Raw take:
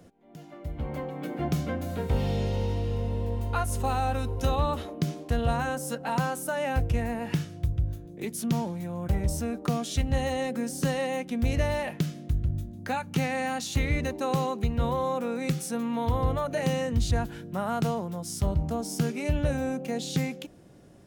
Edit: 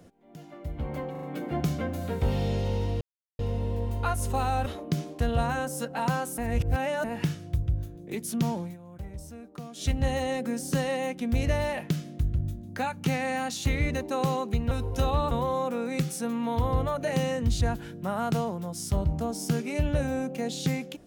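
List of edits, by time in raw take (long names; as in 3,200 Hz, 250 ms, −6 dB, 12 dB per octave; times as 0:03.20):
0:01.11: stutter 0.04 s, 4 plays
0:02.89: splice in silence 0.38 s
0:04.16–0:04.76: move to 0:14.81
0:06.48–0:07.14: reverse
0:08.74–0:09.96: duck −13 dB, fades 0.13 s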